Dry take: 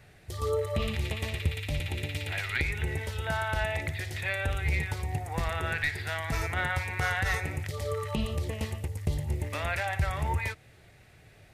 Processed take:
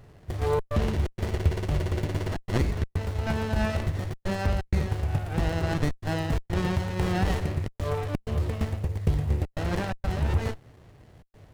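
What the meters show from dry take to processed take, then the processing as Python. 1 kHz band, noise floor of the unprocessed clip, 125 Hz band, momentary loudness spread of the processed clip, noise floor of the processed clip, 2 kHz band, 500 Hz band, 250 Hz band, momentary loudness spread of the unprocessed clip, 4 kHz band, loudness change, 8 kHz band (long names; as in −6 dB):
+0.5 dB, −56 dBFS, +5.0 dB, 4 LU, −63 dBFS, −6.5 dB, +3.5 dB, +9.0 dB, 4 LU, −2.0 dB, +2.5 dB, −2.0 dB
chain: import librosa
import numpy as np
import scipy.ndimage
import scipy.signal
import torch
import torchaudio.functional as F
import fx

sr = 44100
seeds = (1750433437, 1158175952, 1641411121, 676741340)

y = fx.step_gate(x, sr, bpm=127, pattern='xxxxx.xxx.xxxxx', floor_db=-60.0, edge_ms=4.5)
y = fx.running_max(y, sr, window=33)
y = y * librosa.db_to_amplitude(5.5)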